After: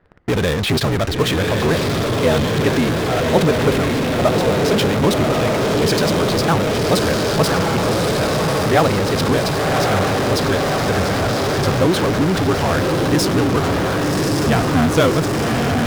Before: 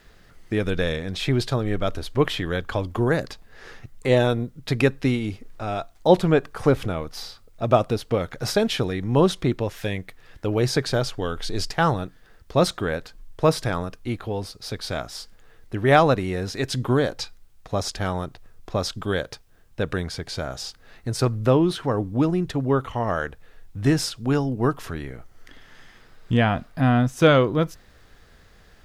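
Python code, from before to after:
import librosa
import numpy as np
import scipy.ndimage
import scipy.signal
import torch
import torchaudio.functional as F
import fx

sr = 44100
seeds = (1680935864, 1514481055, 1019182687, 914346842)

p1 = fx.env_lowpass(x, sr, base_hz=1200.0, full_db=-17.5)
p2 = scipy.signal.sosfilt(scipy.signal.butter(2, 45.0, 'highpass', fs=sr, output='sos'), p1)
p3 = fx.stretch_grains(p2, sr, factor=0.55, grain_ms=29.0)
p4 = fx.echo_diffused(p3, sr, ms=1125, feedback_pct=64, wet_db=-4)
p5 = fx.fuzz(p4, sr, gain_db=45.0, gate_db=-48.0)
y = p4 + (p5 * 10.0 ** (-7.0 / 20.0))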